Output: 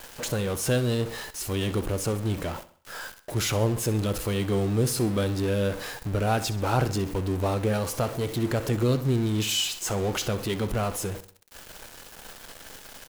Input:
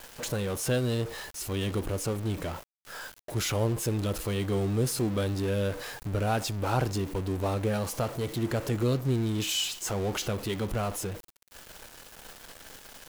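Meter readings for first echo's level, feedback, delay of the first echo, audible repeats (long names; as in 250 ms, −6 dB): −15.5 dB, 45%, 65 ms, 3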